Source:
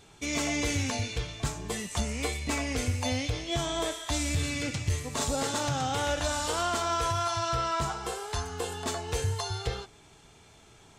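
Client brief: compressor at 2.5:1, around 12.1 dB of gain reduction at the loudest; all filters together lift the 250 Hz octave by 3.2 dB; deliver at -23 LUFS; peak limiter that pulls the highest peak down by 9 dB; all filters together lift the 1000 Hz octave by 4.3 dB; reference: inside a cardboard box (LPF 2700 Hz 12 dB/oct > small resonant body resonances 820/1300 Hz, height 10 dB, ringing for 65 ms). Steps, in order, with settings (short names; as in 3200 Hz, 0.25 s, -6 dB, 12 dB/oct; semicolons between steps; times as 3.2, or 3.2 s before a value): bell 250 Hz +3.5 dB; bell 1000 Hz +5.5 dB; compressor 2.5:1, threshold -42 dBFS; limiter -34.5 dBFS; LPF 2700 Hz 12 dB/oct; small resonant body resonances 820/1300 Hz, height 10 dB, ringing for 65 ms; gain +19.5 dB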